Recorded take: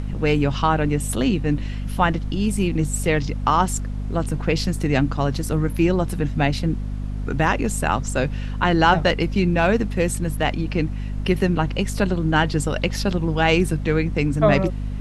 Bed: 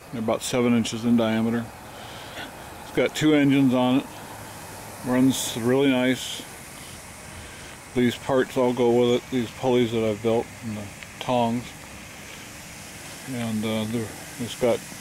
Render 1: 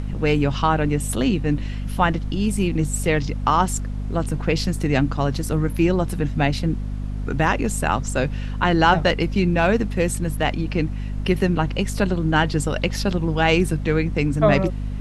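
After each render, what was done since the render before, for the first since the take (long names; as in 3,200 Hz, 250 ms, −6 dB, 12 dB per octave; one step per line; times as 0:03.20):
no processing that can be heard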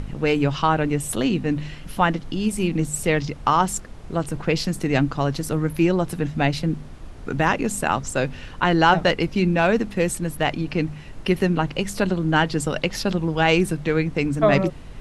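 hum removal 50 Hz, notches 5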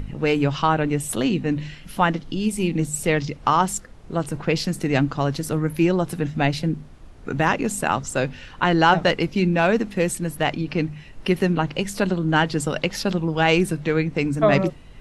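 noise reduction from a noise print 6 dB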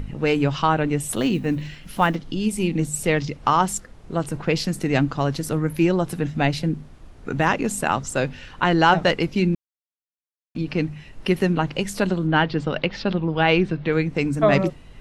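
0:01.16–0:02.17: one scale factor per block 7 bits
0:09.55–0:10.55: silence
0:12.27–0:13.93: low-pass filter 4,200 Hz 24 dB per octave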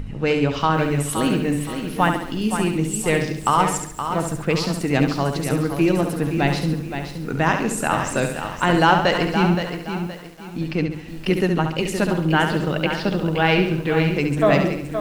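flutter between parallel walls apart 11.8 metres, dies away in 0.61 s
feedback echo at a low word length 520 ms, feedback 35%, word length 7 bits, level −8 dB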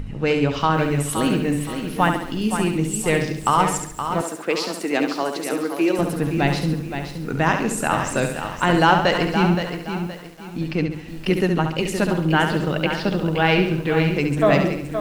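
0:04.21–0:05.99: high-pass filter 270 Hz 24 dB per octave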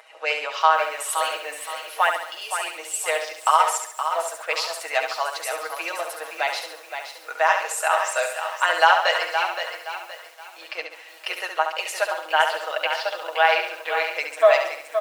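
elliptic high-pass filter 590 Hz, stop band 70 dB
comb filter 6.3 ms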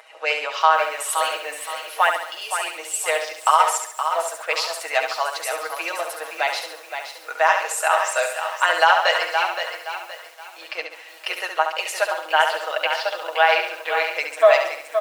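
level +2 dB
brickwall limiter −3 dBFS, peak gain reduction 3 dB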